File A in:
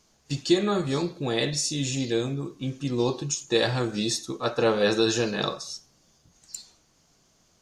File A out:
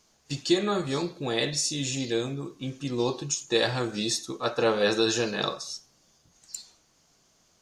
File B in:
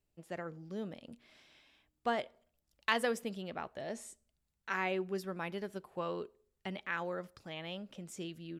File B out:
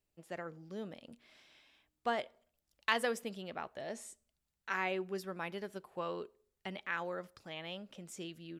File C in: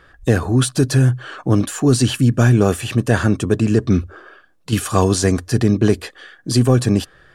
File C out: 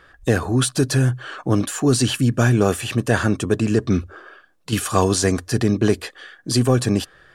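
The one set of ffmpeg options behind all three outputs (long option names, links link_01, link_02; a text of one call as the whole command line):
ffmpeg -i in.wav -af "lowshelf=frequency=310:gain=-5" out.wav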